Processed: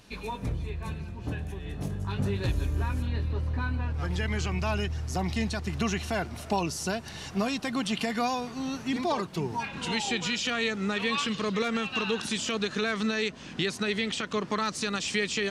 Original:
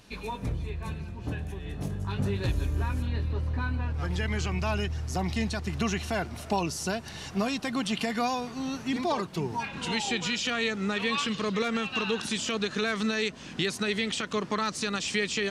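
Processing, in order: 12.78–14.48 s: treble shelf 9.9 kHz -8 dB

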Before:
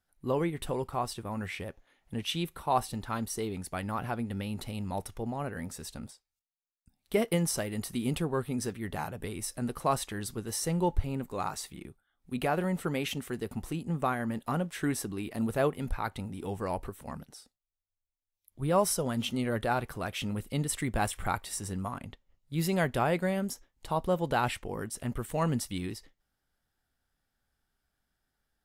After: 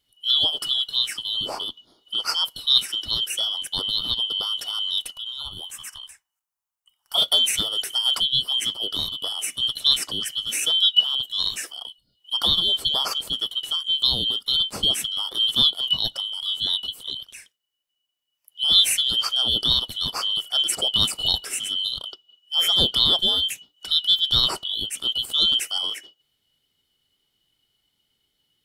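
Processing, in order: four frequency bands reordered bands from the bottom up 2413; 5.12–7.18 s: ten-band graphic EQ 125 Hz -4 dB, 250 Hz -11 dB, 500 Hz -9 dB, 1 kHz +8 dB, 2 kHz -5 dB, 4 kHz -8 dB; trim +8.5 dB

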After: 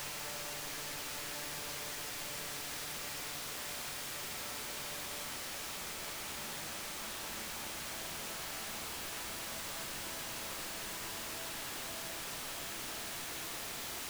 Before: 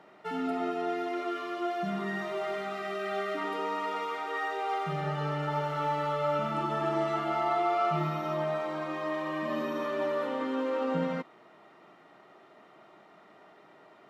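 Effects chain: Chebyshev shaper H 5 -22 dB, 6 -25 dB, 7 -15 dB, 8 -29 dB, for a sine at -17.5 dBFS; integer overflow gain 32 dB; Paulstretch 9.7×, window 1.00 s, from 5.94 s; trim -3.5 dB

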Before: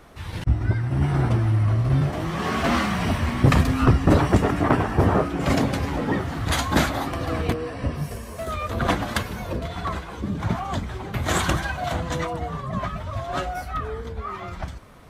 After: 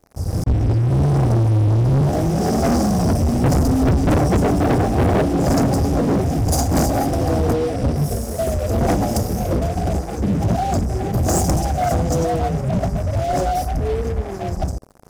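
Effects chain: FFT band-reject 830–4700 Hz; waveshaping leveller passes 5; trim -6.5 dB

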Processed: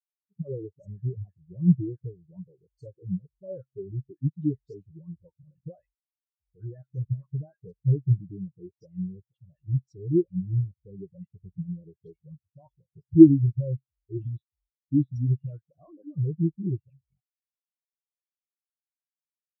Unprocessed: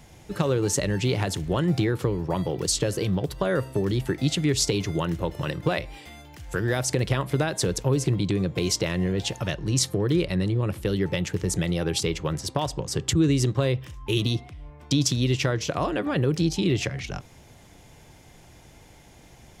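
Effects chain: phase dispersion highs, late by 104 ms, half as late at 1.3 kHz; spectral contrast expander 4:1; trim +6 dB

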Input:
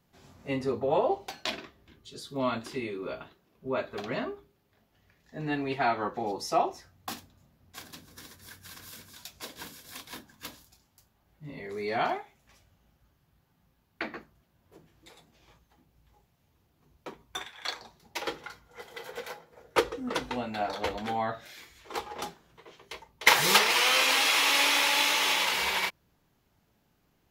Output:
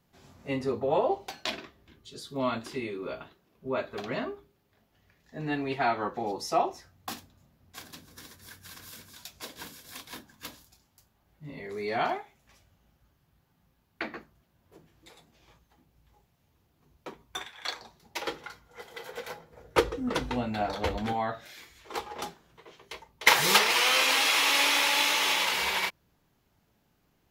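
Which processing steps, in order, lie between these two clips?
19.27–21.13 s: bass shelf 180 Hz +12 dB

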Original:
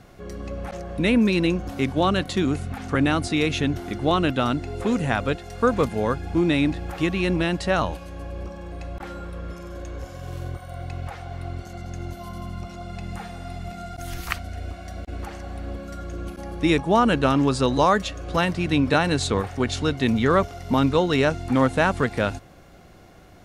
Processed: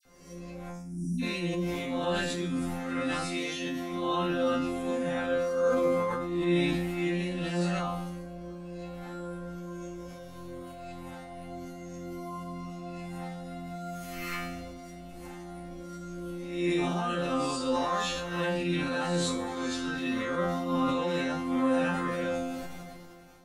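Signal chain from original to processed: reverse spectral sustain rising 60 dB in 0.80 s; 0.66–1.17 s: brick-wall FIR band-stop 330–4800 Hz; 3.20–3.85 s: bass shelf 190 Hz -11.5 dB; phase dispersion lows, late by 54 ms, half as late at 1.8 kHz; in parallel at 0 dB: peak limiter -16 dBFS, peak gain reduction 11 dB; on the sum: treble shelf 8.5 kHz +5.5 dB; chord resonator F3 fifth, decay 0.54 s; decay stretcher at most 25 dB/s

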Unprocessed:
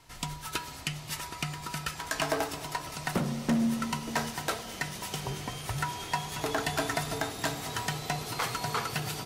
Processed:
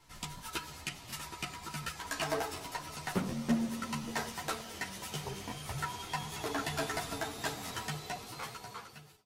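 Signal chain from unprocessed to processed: fade out at the end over 1.60 s; crackling interface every 0.73 s, samples 1024, repeat, from 0.35 s; three-phase chorus; trim -1.5 dB

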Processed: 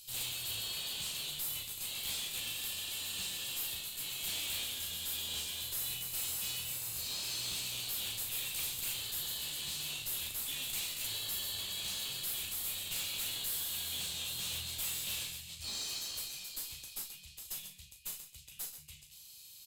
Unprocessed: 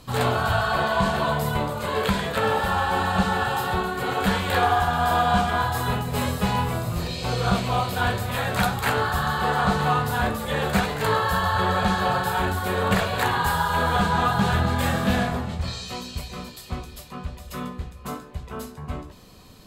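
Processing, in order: elliptic band-stop 150–2600 Hz, stop band 40 dB; pre-emphasis filter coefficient 0.97; valve stage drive 41 dB, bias 0.6; on a send: loudspeakers at several distances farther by 13 m -9 dB, 45 m -11 dB; on the sum: trim +6.5 dB

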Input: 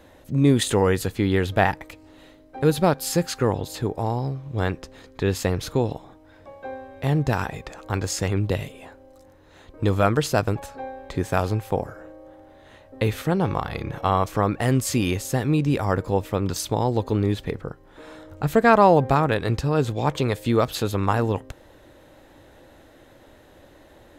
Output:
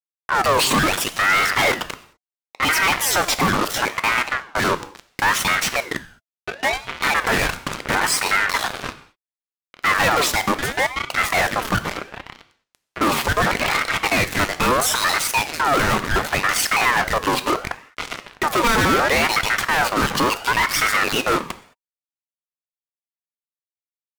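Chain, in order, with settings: random holes in the spectrogram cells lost 36%; high-pass 220 Hz 12 dB/octave; treble shelf 3.3 kHz -7 dB; band-stop 630 Hz, Q 12; waveshaping leveller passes 2; fuzz box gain 37 dB, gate -39 dBFS; on a send at -10 dB: reverberation, pre-delay 3 ms; on the sum: ring modulator with a swept carrier 1.2 kHz, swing 45%, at 0.72 Hz

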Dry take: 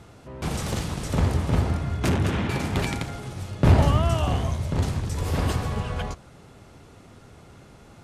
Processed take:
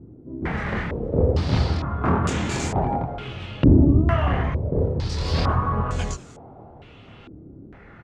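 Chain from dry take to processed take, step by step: chorus voices 2, 0.34 Hz, delay 26 ms, depth 2.5 ms; frequency-shifting echo 198 ms, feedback 62%, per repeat +92 Hz, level -24 dB; step-sequenced low-pass 2.2 Hz 310–7200 Hz; trim +4 dB

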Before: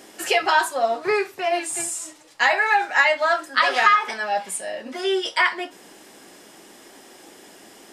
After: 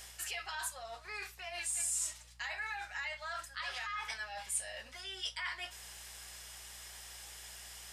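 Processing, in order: peak limiter -13 dBFS, peak gain reduction 9 dB; reverse; compression 6:1, threshold -33 dBFS, peak gain reduction 14 dB; reverse; hum 60 Hz, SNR 16 dB; amplifier tone stack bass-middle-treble 10-0-10; trim +1 dB

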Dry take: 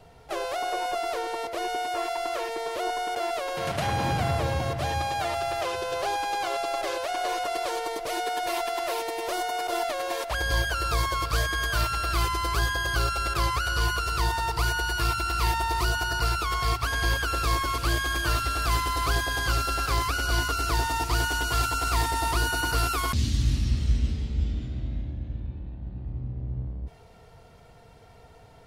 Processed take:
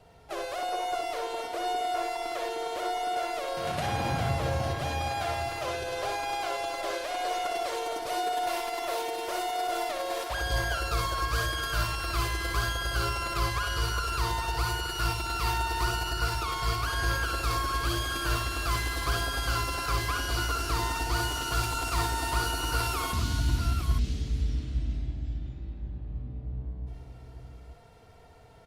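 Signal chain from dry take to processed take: multi-tap echo 61/97/268/814/854/857 ms -5/-14.5/-13/-20/-13.5/-10 dB; trim -4.5 dB; Opus 64 kbps 48 kHz

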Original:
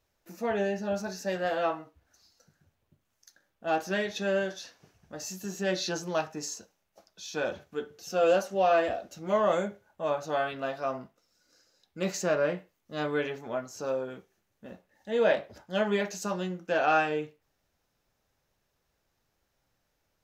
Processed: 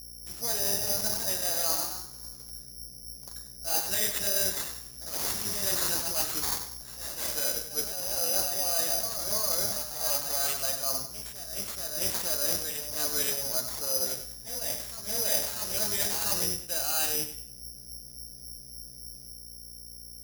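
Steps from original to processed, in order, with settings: octave divider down 1 oct, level -2 dB; bass shelf 490 Hz -8 dB; de-hum 67.72 Hz, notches 6; reverse; compression 10:1, threshold -35 dBFS, peak gain reduction 13.5 dB; reverse; mains buzz 60 Hz, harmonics 11, -54 dBFS -7 dB/octave; ever faster or slower copies 221 ms, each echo +1 st, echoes 2, each echo -6 dB; on a send: thinning echo 96 ms, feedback 34%, high-pass 420 Hz, level -8 dB; on the sum: careless resampling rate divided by 8×, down none, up zero stuff

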